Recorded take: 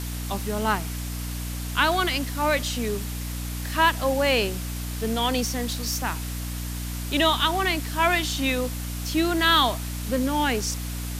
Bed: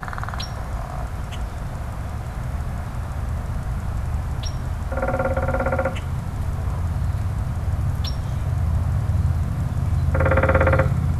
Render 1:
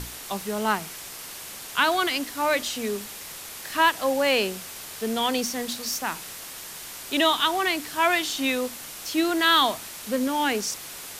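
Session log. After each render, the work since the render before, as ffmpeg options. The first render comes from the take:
-af "bandreject=f=60:t=h:w=6,bandreject=f=120:t=h:w=6,bandreject=f=180:t=h:w=6,bandreject=f=240:t=h:w=6,bandreject=f=300:t=h:w=6"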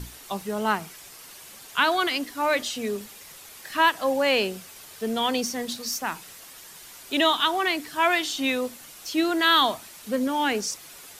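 -af "afftdn=nr=8:nf=-39"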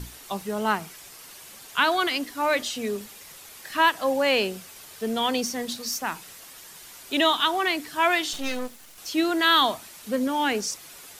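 -filter_complex "[0:a]asettb=1/sr,asplit=3[s0][s1][s2];[s0]atrim=end=8.334[s3];[s1]atrim=start=8.33:end=8.98,asetpts=PTS-STARTPTS,afade=t=in:d=0.004:c=qsin,afade=t=out:st=0.646:d=0.004:c=qsin,aeval=exprs='max(val(0),0)':c=same[s4];[s2]atrim=start=8.976[s5];[s3][s4]acrossfade=d=0.004:c1=hsin:c2=qsin[s6];[s6][s5]acrossfade=d=0.004:c1=qsin:c2=hsin"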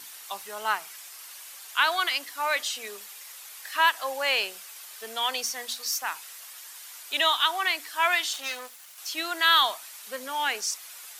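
-af "highpass=900,highshelf=f=10000:g=3.5"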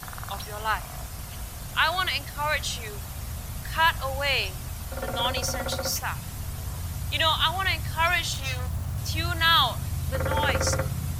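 -filter_complex "[1:a]volume=0.335[s0];[0:a][s0]amix=inputs=2:normalize=0"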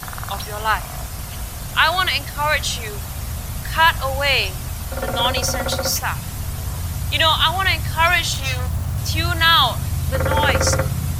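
-af "volume=2.37,alimiter=limit=0.708:level=0:latency=1"

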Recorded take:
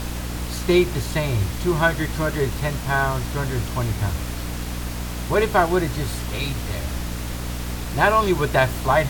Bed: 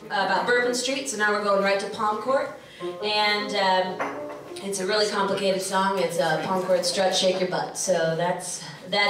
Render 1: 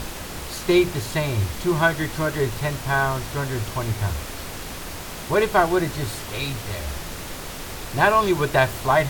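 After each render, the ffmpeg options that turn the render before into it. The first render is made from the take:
-af "bandreject=f=60:t=h:w=6,bandreject=f=120:t=h:w=6,bandreject=f=180:t=h:w=6,bandreject=f=240:t=h:w=6,bandreject=f=300:t=h:w=6"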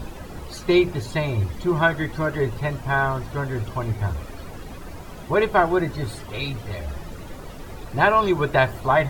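-af "afftdn=nr=14:nf=-34"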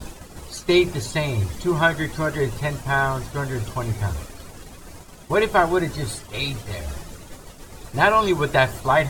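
-af "agate=range=0.0224:threshold=0.0316:ratio=3:detection=peak,equalizer=f=8300:t=o:w=1.8:g=11"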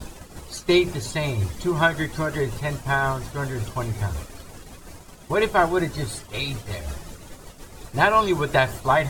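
-af "tremolo=f=5.5:d=0.3"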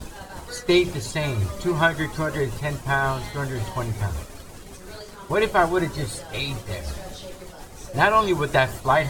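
-filter_complex "[1:a]volume=0.119[s0];[0:a][s0]amix=inputs=2:normalize=0"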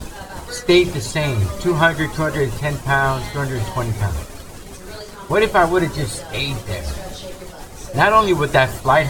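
-af "volume=1.88,alimiter=limit=0.794:level=0:latency=1"

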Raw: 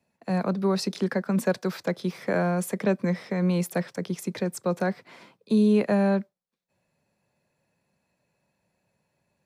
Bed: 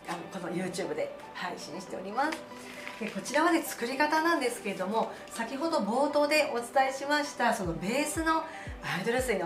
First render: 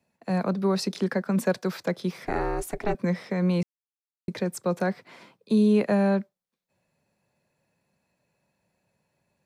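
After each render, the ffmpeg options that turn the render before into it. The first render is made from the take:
-filter_complex "[0:a]asettb=1/sr,asplit=3[s0][s1][s2];[s0]atrim=end=2.254[s3];[s1]atrim=start=2.25:end=2.95,asetpts=PTS-STARTPTS,afade=t=in:d=0.004:c=qsin,afade=t=out:st=0.696:d=0.004:c=qsin,aeval=exprs='val(0)*sin(2*PI*210*n/s)':c=same[s4];[s2]atrim=start=2.946[s5];[s3][s4]acrossfade=d=0.004:c1=hsin:c2=qsin[s6];[s6][s5]acrossfade=d=0.004:c1=qsin:c2=hsin,asplit=3[s7][s8][s9];[s7]atrim=end=3.63,asetpts=PTS-STARTPTS,afade=t=out:st=3.626:d=0.004:c=hsin[s10];[s8]atrim=start=3.63:end=4.28,asetpts=PTS-STARTPTS,volume=0[s11];[s9]atrim=start=4.28,asetpts=PTS-STARTPTS,afade=t=in:d=0.004:c=hsin[s12];[s10][s11][s12]concat=n=3:v=0:a=1"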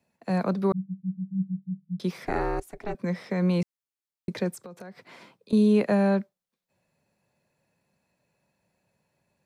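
-filter_complex "[0:a]asettb=1/sr,asplit=3[s0][s1][s2];[s0]atrim=end=0.724[s3];[s1]atrim=start=0.72:end=2,asetpts=PTS-STARTPTS,afade=t=in:d=0.004:c=qsin,afade=t=out:st=1.276:d=0.004:c=qsin,asuperpass=centerf=170:order=12:qfactor=3.9[s4];[s2]atrim=start=1.996[s5];[s3][s4]acrossfade=d=0.004:c1=hsin:c2=qsin[s6];[s6][s5]acrossfade=d=0.004:c1=qsin:c2=hsin,asettb=1/sr,asplit=3[s7][s8][s9];[s7]atrim=end=4.544[s10];[s8]atrim=start=4.54:end=5.53,asetpts=PTS-STARTPTS,afade=t=in:d=0.004:c=qsin,afade=t=out:st=0.986:d=0.004:c=qsin,acompressor=threshold=0.0112:ratio=10:attack=3.2:release=140:knee=1:detection=peak[s11];[s9]atrim=start=5.526[s12];[s10][s11]acrossfade=d=0.004:c1=hsin:c2=qsin[s13];[s13][s12]acrossfade=d=0.004:c1=qsin:c2=hsin,asplit=2[s14][s15];[s14]atrim=end=2.6,asetpts=PTS-STARTPTS,afade=t=out:st=2.596:d=0.004:c=hsin:silence=0.16788[s16];[s15]atrim=start=2.6,asetpts=PTS-STARTPTS,afade=t=in:d=0.77:silence=0.16788[s17];[s16][s17]concat=n=2:v=0:a=1"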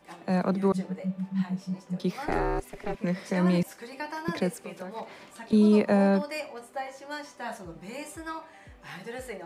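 -filter_complex "[1:a]volume=0.335[s0];[0:a][s0]amix=inputs=2:normalize=0"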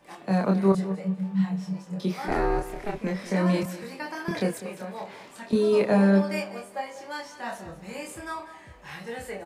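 -filter_complex "[0:a]asplit=2[s0][s1];[s1]adelay=26,volume=0.75[s2];[s0][s2]amix=inputs=2:normalize=0,aecho=1:1:198|396|594:0.2|0.0559|0.0156"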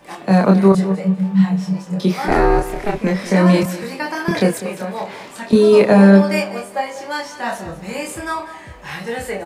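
-af "volume=3.55,alimiter=limit=0.891:level=0:latency=1"

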